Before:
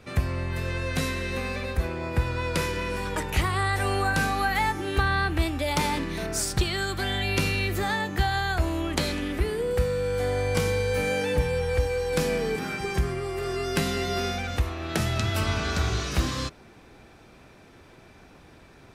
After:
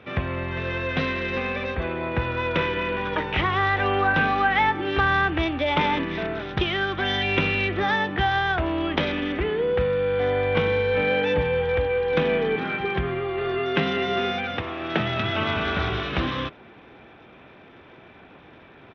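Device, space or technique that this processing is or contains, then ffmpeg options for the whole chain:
Bluetooth headset: -filter_complex "[0:a]asettb=1/sr,asplit=3[a][b][c];[a]atrim=end=13.594[d];[b]atrim=start=13.59:end=15.56,asetpts=PTS-STARTPTS,afade=t=in:d=0.004:c=qsin,afade=t=out:st=1.966:d=0.004:c=qsin,highpass=f=100:w=0.5412,highpass=f=100:w=1.3066[e];[c]atrim=start=15.556[f];[d][e]acrossfade=d=0.004:c1=hsin:c2=qsin[g];[g][f]acrossfade=d=0.004:c1=qsin:c2=hsin,highpass=f=190:p=1,aresample=8000,aresample=44100,volume=5dB" -ar 32000 -c:a sbc -b:a 64k

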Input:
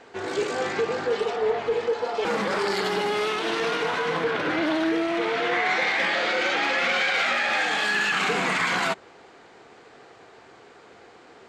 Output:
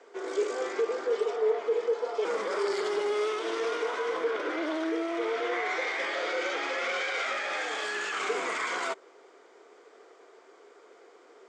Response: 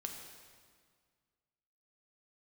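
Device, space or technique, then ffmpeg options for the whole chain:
phone speaker on a table: -af "highpass=f=340:w=0.5412,highpass=f=340:w=1.3066,equalizer=f=410:t=q:w=4:g=4,equalizer=f=810:t=q:w=4:g=-7,equalizer=f=1.7k:t=q:w=4:g=-6,equalizer=f=2.7k:t=q:w=4:g=-8,equalizer=f=4.1k:t=q:w=4:g=-8,lowpass=f=9k:w=0.5412,lowpass=f=9k:w=1.3066,volume=-4dB"

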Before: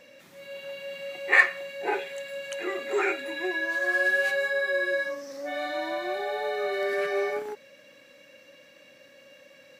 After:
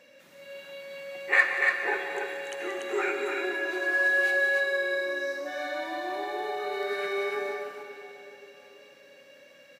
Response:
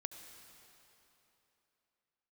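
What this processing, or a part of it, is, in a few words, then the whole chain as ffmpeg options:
stadium PA: -filter_complex "[0:a]highpass=f=130:p=1,equalizer=f=1.5k:t=o:w=0.21:g=3,aecho=1:1:177.8|288.6:0.251|0.631[a];[1:a]atrim=start_sample=2205[b];[a][b]afir=irnorm=-1:irlink=0"

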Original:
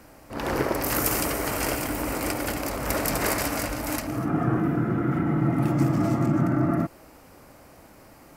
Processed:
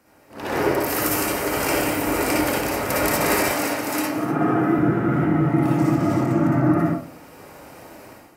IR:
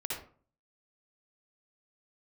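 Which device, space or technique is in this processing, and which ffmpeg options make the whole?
far laptop microphone: -filter_complex "[1:a]atrim=start_sample=2205[a];[0:a][a]afir=irnorm=-1:irlink=0,highpass=f=160:p=1,dynaudnorm=f=300:g=3:m=13dB,asettb=1/sr,asplit=3[b][c][d];[b]atrim=end=3.514[e];[c]atrim=start=3.51:end=4.79,asetpts=PTS-STARTPTS,afade=t=in:d=0.004:c=qsin,afade=t=out:st=1.276:d=0.004:c=qsin,highpass=160[f];[d]atrim=start=4.786[g];[e][f]acrossfade=d=0.004:c1=hsin:c2=qsin[h];[h][g]acrossfade=d=0.004:c1=qsin:c2=hsin,volume=-6dB"

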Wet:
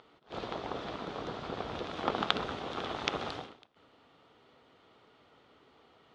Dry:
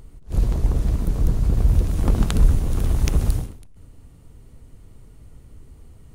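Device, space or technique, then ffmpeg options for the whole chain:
phone earpiece: -af "highpass=490,equalizer=f=770:t=q:w=4:g=4,equalizer=f=1.3k:t=q:w=4:g=6,equalizer=f=3.4k:t=q:w=4:g=7,lowpass=f=4.3k:w=0.5412,lowpass=f=4.3k:w=1.3066"

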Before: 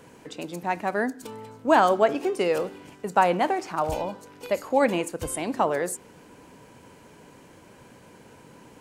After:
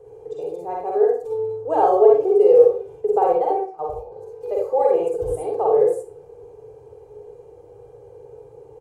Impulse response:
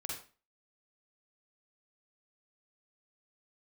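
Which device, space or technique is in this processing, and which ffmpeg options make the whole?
microphone above a desk: -filter_complex "[0:a]asettb=1/sr,asplit=3[a][b][c];[a]atrim=end=3.274[d];[b]atrim=start=3.27:end=4.12,asetpts=PTS-STARTPTS,afade=t=in:d=0.004:c=qsin,afade=t=out:st=0.846:d=0.004:c=qsin,agate=range=-17dB:threshold=-24dB:ratio=16:detection=peak[e];[c]atrim=start=4.116[f];[d][e]acrossfade=d=0.004:c1=hsin:c2=qsin[g];[g][f]acrossfade=d=0.004:c1=qsin:c2=hsin,firequalizer=gain_entry='entry(140,0);entry(230,-27);entry(430,11);entry(650,1);entry(1600,-21);entry(7200,-17)':delay=0.05:min_phase=1,aecho=1:1:2.5:0.58[h];[1:a]atrim=start_sample=2205[i];[h][i]afir=irnorm=-1:irlink=0,volume=2.5dB"

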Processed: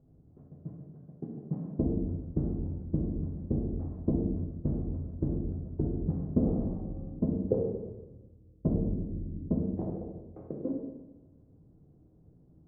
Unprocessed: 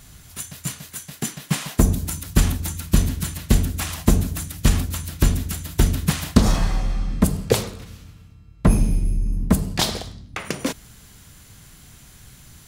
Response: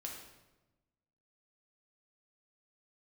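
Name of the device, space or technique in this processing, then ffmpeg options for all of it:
next room: -filter_complex "[0:a]lowpass=f=490:w=0.5412,lowpass=f=490:w=1.3066[a];[1:a]atrim=start_sample=2205[b];[a][b]afir=irnorm=-1:irlink=0,aemphasis=mode=production:type=bsi"

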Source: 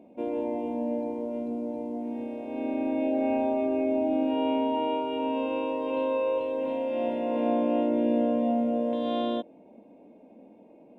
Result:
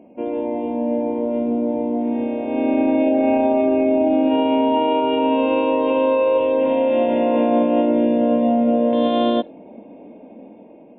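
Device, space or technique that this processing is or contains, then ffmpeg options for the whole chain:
low-bitrate web radio: -af "dynaudnorm=f=420:g=5:m=6dB,alimiter=limit=-15.5dB:level=0:latency=1:release=31,volume=6.5dB" -ar 8000 -c:a libmp3lame -b:a 24k

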